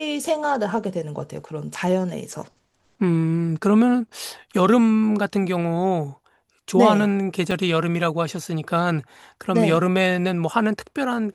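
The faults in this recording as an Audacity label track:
7.510000	7.510000	dropout 2.9 ms

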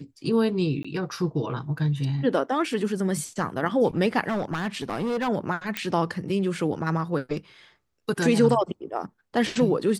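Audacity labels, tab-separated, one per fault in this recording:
0.830000	0.840000	dropout 15 ms
4.280000	5.290000	clipped -23 dBFS
5.770000	5.770000	pop -11 dBFS

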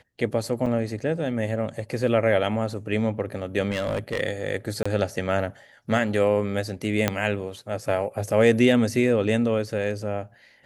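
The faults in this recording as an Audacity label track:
0.660000	0.660000	dropout 4 ms
3.710000	4.210000	clipped -21 dBFS
4.830000	4.860000	dropout 25 ms
7.080000	7.080000	pop -5 dBFS

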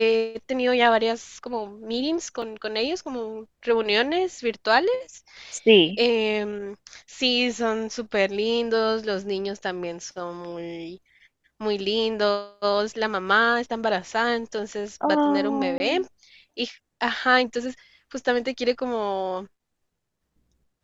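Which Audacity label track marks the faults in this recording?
2.420000	2.420000	dropout 3.4 ms
15.780000	15.800000	dropout 20 ms

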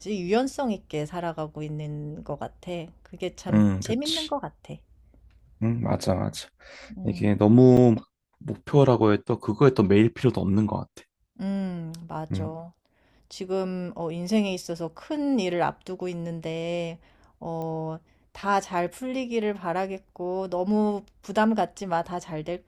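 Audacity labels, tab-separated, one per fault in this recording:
7.770000	7.770000	dropout 4.1 ms
17.620000	17.620000	pop -23 dBFS

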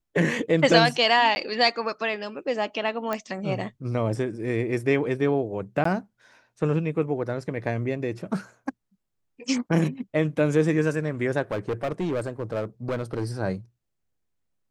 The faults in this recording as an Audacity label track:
1.350000	1.360000	dropout 10 ms
3.130000	3.130000	pop -14 dBFS
5.840000	5.850000	dropout 14 ms
11.510000	13.240000	clipped -22.5 dBFS

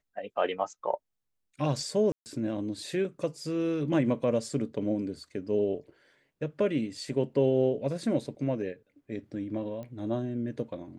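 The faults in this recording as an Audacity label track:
2.120000	2.260000	dropout 139 ms
9.830000	9.830000	pop -30 dBFS

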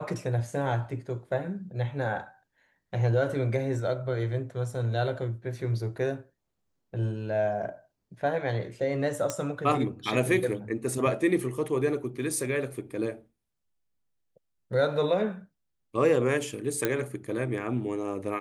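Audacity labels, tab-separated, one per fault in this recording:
9.300000	9.300000	pop -15 dBFS
16.850000	16.850000	pop -11 dBFS

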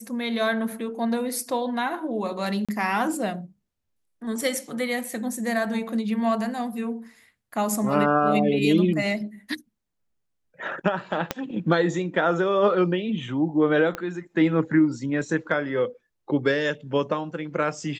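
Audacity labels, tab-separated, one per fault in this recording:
2.650000	2.690000	dropout 36 ms
11.310000	11.310000	pop -9 dBFS
13.950000	13.950000	pop -15 dBFS

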